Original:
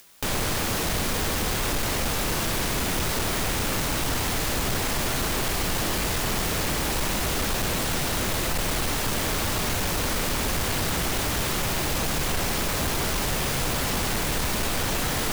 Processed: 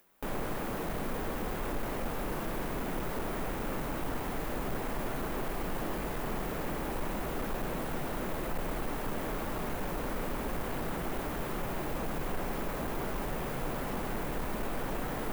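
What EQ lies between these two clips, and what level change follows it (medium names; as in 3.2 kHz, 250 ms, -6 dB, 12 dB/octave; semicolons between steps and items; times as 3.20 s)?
peaking EQ 83 Hz -12.5 dB 1.1 oct; treble shelf 4 kHz -6.5 dB; peaking EQ 5.1 kHz -14.5 dB 2.5 oct; -4.5 dB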